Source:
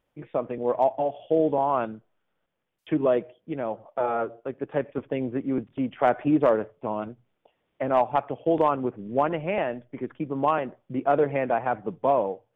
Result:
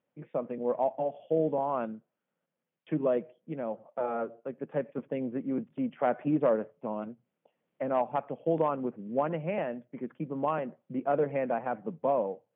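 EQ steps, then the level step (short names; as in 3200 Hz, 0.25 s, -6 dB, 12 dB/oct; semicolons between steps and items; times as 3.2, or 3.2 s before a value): speaker cabinet 150–3100 Hz, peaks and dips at 160 Hz +10 dB, 230 Hz +7 dB, 530 Hz +5 dB; -8.0 dB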